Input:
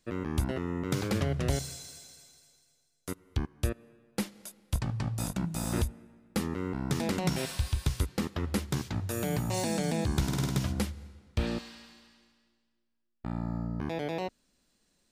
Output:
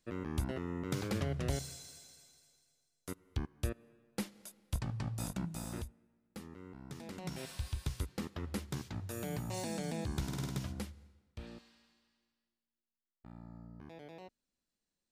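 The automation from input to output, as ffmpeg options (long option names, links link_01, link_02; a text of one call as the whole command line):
ffmpeg -i in.wav -af "volume=2.5dB,afade=type=out:start_time=5.4:duration=0.52:silence=0.281838,afade=type=in:start_time=7.06:duration=0.62:silence=0.375837,afade=type=out:start_time=10.5:duration=0.88:silence=0.354813" out.wav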